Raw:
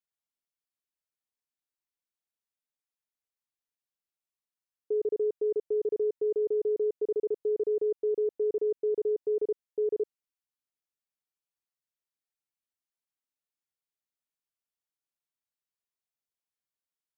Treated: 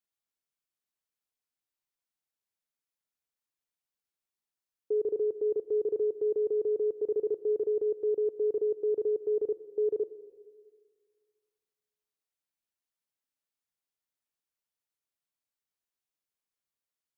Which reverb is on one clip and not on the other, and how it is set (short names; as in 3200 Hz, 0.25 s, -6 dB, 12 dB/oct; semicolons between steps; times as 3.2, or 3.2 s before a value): digital reverb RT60 1.9 s, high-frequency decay 0.9×, pre-delay 30 ms, DRR 15 dB